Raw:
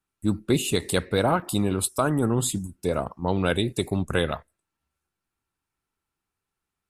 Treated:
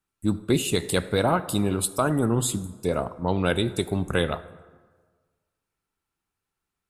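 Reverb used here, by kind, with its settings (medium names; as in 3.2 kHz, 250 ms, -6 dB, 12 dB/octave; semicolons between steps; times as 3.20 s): plate-style reverb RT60 1.5 s, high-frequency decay 0.55×, DRR 14 dB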